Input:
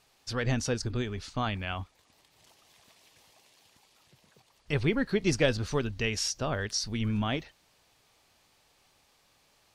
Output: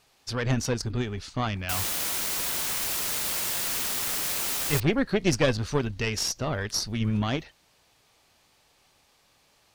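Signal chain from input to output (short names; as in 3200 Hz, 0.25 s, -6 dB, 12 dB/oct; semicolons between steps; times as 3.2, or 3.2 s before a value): tube stage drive 20 dB, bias 0.75; 1.69–4.8 requantised 6-bit, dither triangular; gain +7 dB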